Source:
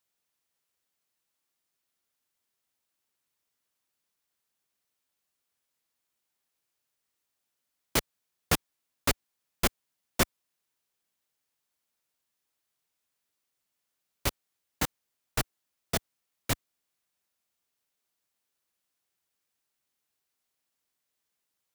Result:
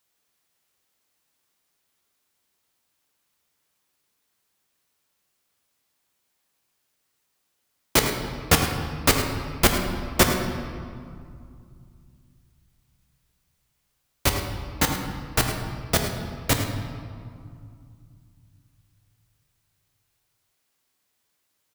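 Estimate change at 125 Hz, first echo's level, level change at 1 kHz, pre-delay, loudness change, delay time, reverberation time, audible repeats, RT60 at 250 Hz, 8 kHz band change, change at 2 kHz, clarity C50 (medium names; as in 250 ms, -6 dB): +11.5 dB, -12.0 dB, +10.0 dB, 11 ms, +8.0 dB, 106 ms, 2.3 s, 1, 3.3 s, +8.5 dB, +9.0 dB, 4.0 dB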